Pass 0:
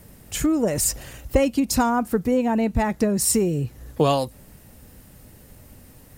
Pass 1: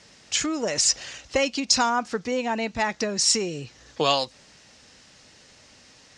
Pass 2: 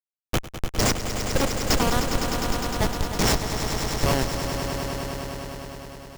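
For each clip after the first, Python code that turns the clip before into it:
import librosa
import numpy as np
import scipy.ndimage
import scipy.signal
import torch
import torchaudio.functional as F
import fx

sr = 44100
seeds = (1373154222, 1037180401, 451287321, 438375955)

y1 = scipy.signal.sosfilt(scipy.signal.butter(6, 6100.0, 'lowpass', fs=sr, output='sos'), x)
y1 = fx.tilt_eq(y1, sr, slope=4.5)
y2 = fx.schmitt(y1, sr, flips_db=-17.0)
y2 = fx.echo_swell(y2, sr, ms=102, loudest=5, wet_db=-9.5)
y2 = y2 * librosa.db_to_amplitude(7.0)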